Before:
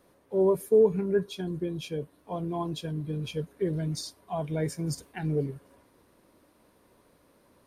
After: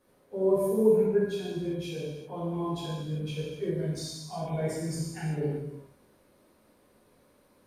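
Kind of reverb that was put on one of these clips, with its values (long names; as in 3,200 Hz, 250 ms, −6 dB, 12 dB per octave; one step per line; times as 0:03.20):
reverb whose tail is shaped and stops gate 420 ms falling, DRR −8 dB
level −9 dB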